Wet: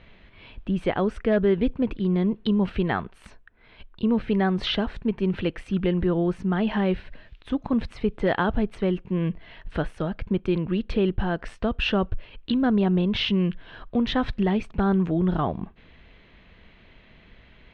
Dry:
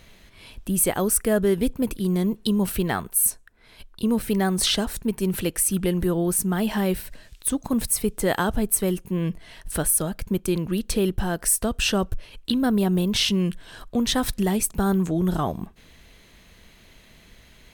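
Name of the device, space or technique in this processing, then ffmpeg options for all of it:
synthesiser wavefolder: -af "aeval=exprs='0.266*(abs(mod(val(0)/0.266+3,4)-2)-1)':c=same,lowpass=f=3.2k:w=0.5412,lowpass=f=3.2k:w=1.3066"

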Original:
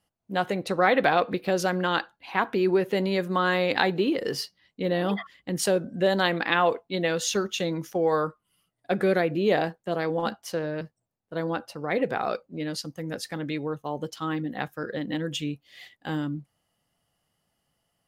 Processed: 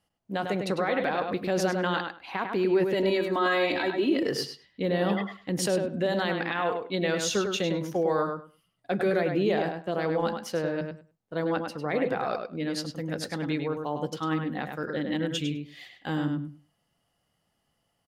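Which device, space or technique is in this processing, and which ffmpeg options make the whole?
stacked limiters: -filter_complex "[0:a]asettb=1/sr,asplit=3[a][b][c];[a]atrim=end=2.934[d];[b]atrim=start=2.93:end=4.23,asetpts=PTS-STARTPTS,afade=t=in:d=0.004:c=qsin,afade=t=out:st=1.296:d=0.004:c=qsin,aecho=1:1:3.1:0.73,atrim=end_sample=57330[e];[c]atrim=start=4.226[f];[d][e]acrossfade=d=0.004:c1=hsin:c2=qsin[g];[g][f]acrossfade=d=0.004:c1=qsin:c2=hsin,alimiter=limit=-12.5dB:level=0:latency=1:release=447,alimiter=limit=-18dB:level=0:latency=1:release=23,highshelf=f=10k:g=-5.5,asplit=2[h][i];[i]adelay=101,lowpass=f=3.9k:p=1,volume=-5dB,asplit=2[j][k];[k]adelay=101,lowpass=f=3.9k:p=1,volume=0.17,asplit=2[l][m];[m]adelay=101,lowpass=f=3.9k:p=1,volume=0.17[n];[h][j][l][n]amix=inputs=4:normalize=0"

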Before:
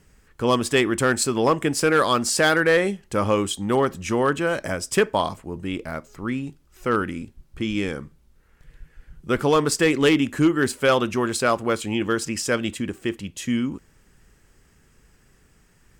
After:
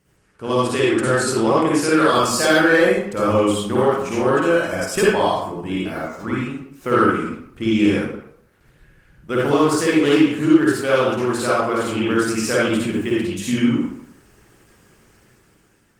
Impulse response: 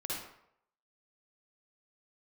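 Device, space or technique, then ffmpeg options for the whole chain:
far-field microphone of a smart speaker: -filter_complex "[1:a]atrim=start_sample=2205[a];[0:a][a]afir=irnorm=-1:irlink=0,highpass=f=110:p=1,dynaudnorm=f=490:g=5:m=10dB,volume=-1dB" -ar 48000 -c:a libopus -b:a 20k

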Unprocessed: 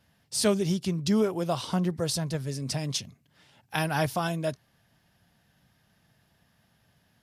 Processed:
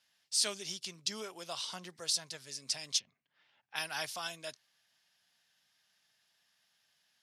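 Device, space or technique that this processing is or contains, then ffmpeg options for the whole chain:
piezo pickup straight into a mixer: -filter_complex "[0:a]lowpass=5.8k,aderivative,asplit=3[a][b][c];[a]afade=t=out:st=2.98:d=0.02[d];[b]lowpass=2k,afade=t=in:st=2.98:d=0.02,afade=t=out:st=3.75:d=0.02[e];[c]afade=t=in:st=3.75:d=0.02[f];[d][e][f]amix=inputs=3:normalize=0,volume=5.5dB"

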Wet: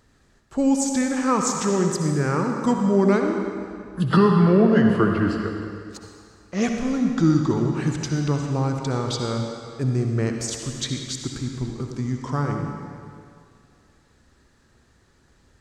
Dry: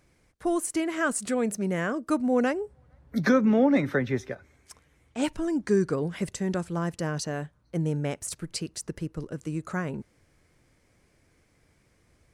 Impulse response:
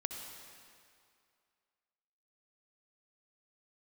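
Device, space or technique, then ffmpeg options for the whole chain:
slowed and reverbed: -filter_complex "[0:a]asetrate=34839,aresample=44100[a];[1:a]atrim=start_sample=2205[b];[a][b]afir=irnorm=-1:irlink=0,volume=5.5dB"

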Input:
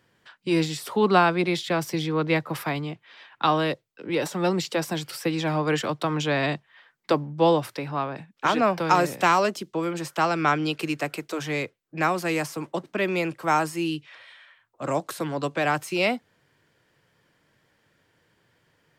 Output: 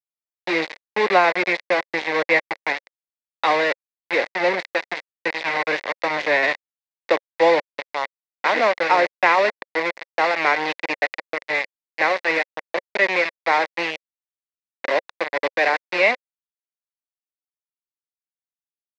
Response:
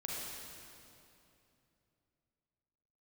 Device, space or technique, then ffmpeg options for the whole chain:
hand-held game console: -filter_complex "[0:a]asettb=1/sr,asplit=3[a][b][c];[a]atrim=end=4.554[d];[b]atrim=start=4.55:end=6.03,asetpts=PTS-STARTPTS,afade=t=in:d=0.004:c=qsin,afade=t=out:st=1.476:d=0.004:c=qsin,equalizer=f=520:t=o:w=1.9:g=-3.5[e];[c]atrim=start=6.026[f];[d][e]acrossfade=d=0.004:c1=hsin:c2=qsin[g];[g][f]acrossfade=d=0.004:c1=qsin:c2=hsin,acrusher=bits=3:mix=0:aa=0.000001,highpass=490,equalizer=f=540:t=q:w=4:g=5,equalizer=f=1.3k:t=q:w=4:g=-8,equalizer=f=2k:t=q:w=4:g=10,equalizer=f=3.1k:t=q:w=4:g=-9,lowpass=f=4k:w=0.5412,lowpass=f=4k:w=1.3066,volume=4dB"

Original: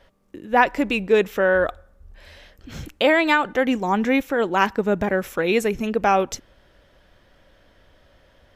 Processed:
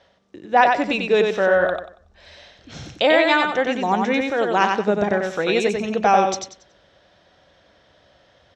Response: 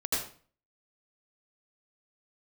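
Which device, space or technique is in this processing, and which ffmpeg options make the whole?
car door speaker: -af "highpass=94,equalizer=f=250:t=q:w=4:g=-4,equalizer=f=710:t=q:w=4:g=6,equalizer=f=3.8k:t=q:w=4:g=6,equalizer=f=5.7k:t=q:w=4:g=5,lowpass=f=7.4k:w=0.5412,lowpass=f=7.4k:w=1.3066,aecho=1:1:93|186|279|372:0.631|0.17|0.046|0.0124,volume=-1dB"

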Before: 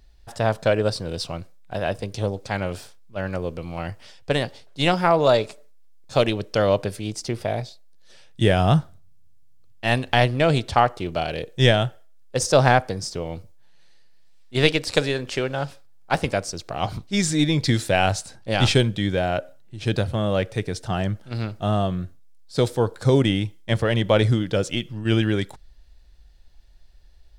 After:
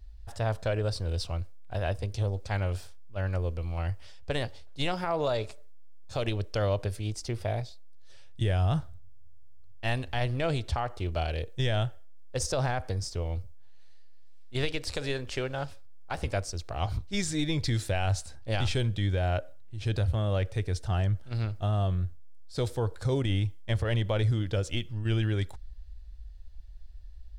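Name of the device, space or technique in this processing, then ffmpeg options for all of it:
car stereo with a boomy subwoofer: -af "lowshelf=f=110:t=q:w=1.5:g=12.5,alimiter=limit=-12.5dB:level=0:latency=1:release=73,volume=-7dB"

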